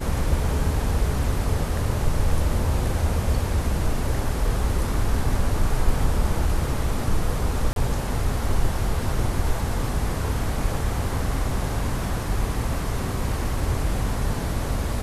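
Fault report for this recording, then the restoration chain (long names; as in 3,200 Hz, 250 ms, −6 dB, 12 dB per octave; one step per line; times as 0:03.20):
0:07.73–0:07.76: drop-out 32 ms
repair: repair the gap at 0:07.73, 32 ms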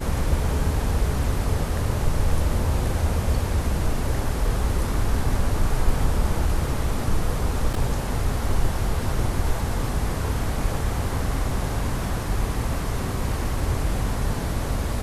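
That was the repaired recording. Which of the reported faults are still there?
none of them is left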